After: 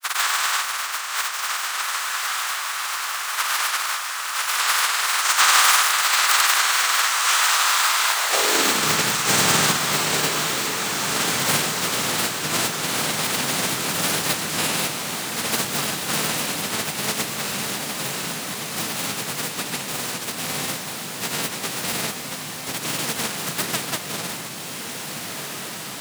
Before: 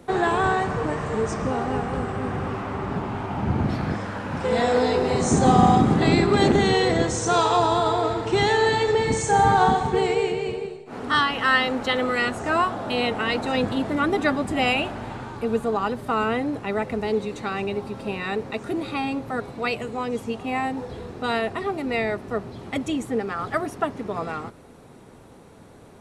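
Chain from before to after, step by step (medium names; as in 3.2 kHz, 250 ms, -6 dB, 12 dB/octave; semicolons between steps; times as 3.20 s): spectral contrast reduction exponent 0.14; hum notches 60/120 Hz; granulator; high-pass sweep 1.2 kHz -> 150 Hz, 8.02–8.90 s; echo that smears into a reverb 1924 ms, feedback 55%, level -5 dB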